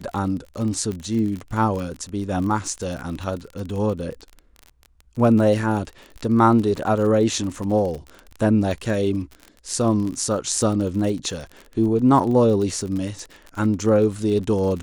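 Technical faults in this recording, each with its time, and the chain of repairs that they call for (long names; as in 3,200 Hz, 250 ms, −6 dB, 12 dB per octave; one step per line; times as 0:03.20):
surface crackle 37 per second −28 dBFS
0:00.92: click −18 dBFS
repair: click removal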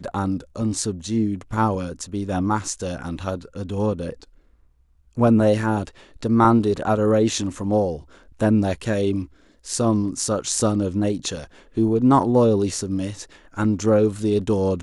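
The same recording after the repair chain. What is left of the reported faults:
none of them is left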